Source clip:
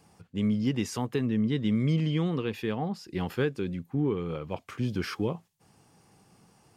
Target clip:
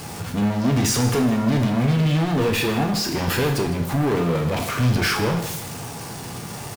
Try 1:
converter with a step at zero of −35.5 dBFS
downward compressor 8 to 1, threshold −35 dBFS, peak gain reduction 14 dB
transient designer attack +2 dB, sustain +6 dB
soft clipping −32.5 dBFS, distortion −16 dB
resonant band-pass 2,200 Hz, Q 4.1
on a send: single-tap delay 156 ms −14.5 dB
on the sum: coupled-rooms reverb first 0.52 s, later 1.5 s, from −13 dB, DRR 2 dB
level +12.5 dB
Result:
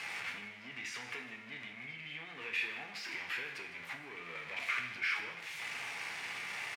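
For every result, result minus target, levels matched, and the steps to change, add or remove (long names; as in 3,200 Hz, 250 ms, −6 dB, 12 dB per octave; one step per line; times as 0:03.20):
downward compressor: peak gain reduction +14 dB; 2,000 Hz band +11.0 dB; converter with a step at zero: distortion +8 dB
remove: downward compressor 8 to 1, threshold −35 dBFS, peak gain reduction 14 dB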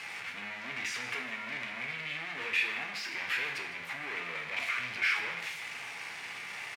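2,000 Hz band +11.0 dB; converter with a step at zero: distortion +8 dB
remove: resonant band-pass 2,200 Hz, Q 4.1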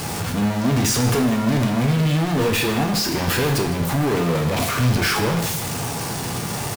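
converter with a step at zero: distortion +8 dB
change: converter with a step at zero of −44 dBFS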